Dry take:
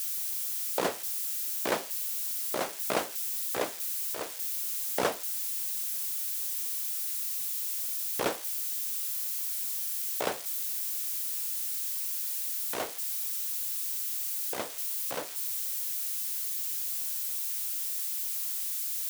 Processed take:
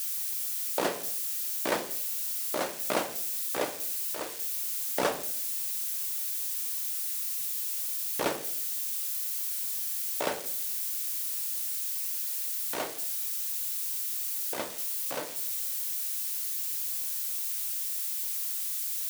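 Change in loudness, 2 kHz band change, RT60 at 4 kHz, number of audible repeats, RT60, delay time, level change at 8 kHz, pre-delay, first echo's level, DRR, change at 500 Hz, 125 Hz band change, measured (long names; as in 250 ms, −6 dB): +0.5 dB, +1.0 dB, 0.45 s, no echo audible, 0.60 s, no echo audible, +0.5 dB, 3 ms, no echo audible, 7.0 dB, +1.0 dB, 0.0 dB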